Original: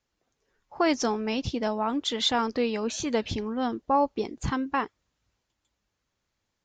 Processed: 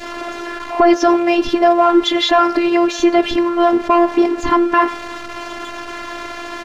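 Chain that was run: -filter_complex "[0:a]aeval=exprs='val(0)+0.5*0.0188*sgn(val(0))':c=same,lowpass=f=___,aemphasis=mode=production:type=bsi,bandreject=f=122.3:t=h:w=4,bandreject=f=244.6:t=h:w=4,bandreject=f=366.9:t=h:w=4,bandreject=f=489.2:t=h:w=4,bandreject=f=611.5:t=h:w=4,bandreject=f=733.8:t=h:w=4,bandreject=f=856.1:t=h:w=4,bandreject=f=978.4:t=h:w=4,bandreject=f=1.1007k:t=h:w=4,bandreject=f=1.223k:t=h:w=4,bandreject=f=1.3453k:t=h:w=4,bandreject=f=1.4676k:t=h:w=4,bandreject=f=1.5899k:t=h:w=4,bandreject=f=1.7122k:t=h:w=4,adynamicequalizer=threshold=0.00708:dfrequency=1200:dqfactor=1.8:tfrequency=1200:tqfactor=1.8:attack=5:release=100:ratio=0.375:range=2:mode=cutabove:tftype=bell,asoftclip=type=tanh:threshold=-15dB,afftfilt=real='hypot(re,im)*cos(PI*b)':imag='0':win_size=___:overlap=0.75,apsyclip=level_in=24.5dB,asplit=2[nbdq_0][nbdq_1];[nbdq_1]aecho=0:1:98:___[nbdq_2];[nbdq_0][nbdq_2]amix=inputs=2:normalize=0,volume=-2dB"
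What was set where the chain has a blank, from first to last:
1.6k, 512, 0.0708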